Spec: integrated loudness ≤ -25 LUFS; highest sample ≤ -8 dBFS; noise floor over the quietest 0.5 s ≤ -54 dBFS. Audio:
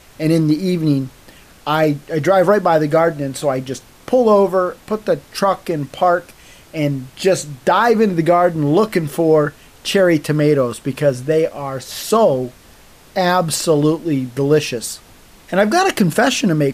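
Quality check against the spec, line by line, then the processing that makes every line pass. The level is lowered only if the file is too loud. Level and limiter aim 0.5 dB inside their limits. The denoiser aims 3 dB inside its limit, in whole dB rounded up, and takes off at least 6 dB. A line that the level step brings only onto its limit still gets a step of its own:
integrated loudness -16.5 LUFS: fail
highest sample -3.5 dBFS: fail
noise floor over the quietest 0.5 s -45 dBFS: fail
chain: denoiser 6 dB, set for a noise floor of -45 dBFS; gain -9 dB

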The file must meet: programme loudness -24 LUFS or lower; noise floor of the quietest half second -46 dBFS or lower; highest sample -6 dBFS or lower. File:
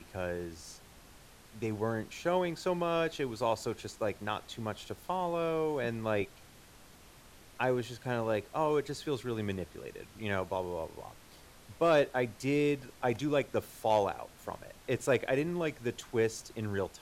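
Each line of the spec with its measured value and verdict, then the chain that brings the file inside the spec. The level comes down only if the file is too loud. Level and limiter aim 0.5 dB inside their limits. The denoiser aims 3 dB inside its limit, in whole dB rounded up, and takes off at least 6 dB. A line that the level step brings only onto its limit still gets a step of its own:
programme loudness -33.5 LUFS: OK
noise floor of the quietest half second -56 dBFS: OK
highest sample -17.5 dBFS: OK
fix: none

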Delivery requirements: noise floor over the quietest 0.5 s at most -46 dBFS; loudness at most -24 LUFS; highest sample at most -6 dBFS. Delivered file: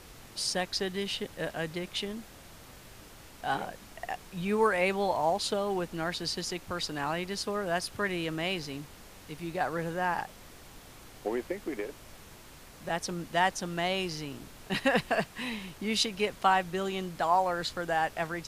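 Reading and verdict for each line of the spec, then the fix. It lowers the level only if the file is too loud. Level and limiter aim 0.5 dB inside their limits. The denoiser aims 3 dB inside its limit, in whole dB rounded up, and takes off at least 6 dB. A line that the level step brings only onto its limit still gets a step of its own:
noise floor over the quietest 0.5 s -51 dBFS: OK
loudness -31.5 LUFS: OK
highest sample -12.0 dBFS: OK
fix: none

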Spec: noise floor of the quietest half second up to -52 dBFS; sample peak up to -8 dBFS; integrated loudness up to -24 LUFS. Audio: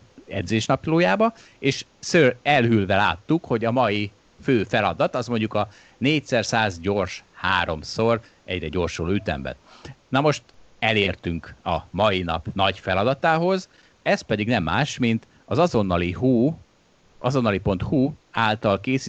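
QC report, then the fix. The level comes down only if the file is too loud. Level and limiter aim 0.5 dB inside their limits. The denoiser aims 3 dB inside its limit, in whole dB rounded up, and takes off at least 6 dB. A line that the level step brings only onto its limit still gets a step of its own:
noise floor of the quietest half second -58 dBFS: OK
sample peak -5.0 dBFS: fail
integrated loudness -22.5 LUFS: fail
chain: gain -2 dB; limiter -8.5 dBFS

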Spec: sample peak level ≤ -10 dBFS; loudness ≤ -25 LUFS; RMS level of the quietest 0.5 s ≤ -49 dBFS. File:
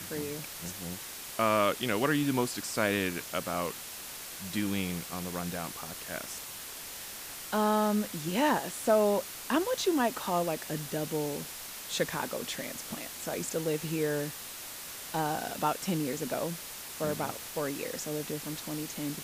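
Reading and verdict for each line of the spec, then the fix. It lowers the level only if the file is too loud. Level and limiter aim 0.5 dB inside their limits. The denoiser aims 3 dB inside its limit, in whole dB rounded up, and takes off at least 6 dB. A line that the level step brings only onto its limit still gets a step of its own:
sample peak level -14.0 dBFS: OK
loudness -32.5 LUFS: OK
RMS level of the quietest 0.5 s -43 dBFS: fail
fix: denoiser 9 dB, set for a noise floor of -43 dBFS

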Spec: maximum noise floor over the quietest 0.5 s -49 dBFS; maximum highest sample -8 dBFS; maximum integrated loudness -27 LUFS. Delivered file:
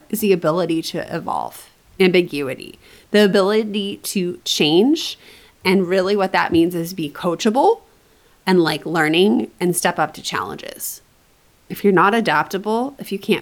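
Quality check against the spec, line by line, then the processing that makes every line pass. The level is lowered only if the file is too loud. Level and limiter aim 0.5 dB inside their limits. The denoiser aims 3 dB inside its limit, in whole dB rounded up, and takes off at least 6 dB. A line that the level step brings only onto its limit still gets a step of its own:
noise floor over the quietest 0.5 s -55 dBFS: OK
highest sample -4.0 dBFS: fail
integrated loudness -18.5 LUFS: fail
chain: gain -9 dB

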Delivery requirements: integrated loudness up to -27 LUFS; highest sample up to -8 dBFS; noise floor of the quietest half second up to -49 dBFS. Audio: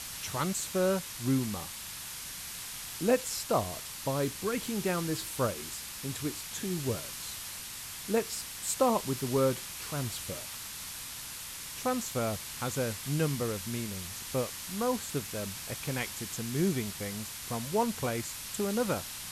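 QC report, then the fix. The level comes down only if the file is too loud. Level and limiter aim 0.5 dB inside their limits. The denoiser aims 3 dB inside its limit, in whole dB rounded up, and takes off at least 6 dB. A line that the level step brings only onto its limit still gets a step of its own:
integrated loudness -33.0 LUFS: OK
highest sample -13.5 dBFS: OK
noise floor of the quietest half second -42 dBFS: fail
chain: denoiser 10 dB, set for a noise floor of -42 dBFS

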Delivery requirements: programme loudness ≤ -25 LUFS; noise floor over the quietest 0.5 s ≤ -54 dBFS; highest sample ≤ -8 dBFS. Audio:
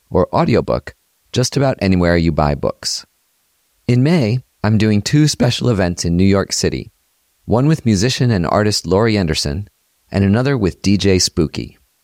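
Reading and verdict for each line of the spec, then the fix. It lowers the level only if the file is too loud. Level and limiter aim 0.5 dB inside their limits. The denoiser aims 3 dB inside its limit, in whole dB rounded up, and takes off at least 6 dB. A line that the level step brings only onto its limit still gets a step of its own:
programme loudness -15.5 LUFS: fail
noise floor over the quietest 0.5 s -62 dBFS: OK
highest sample -2.5 dBFS: fail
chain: gain -10 dB

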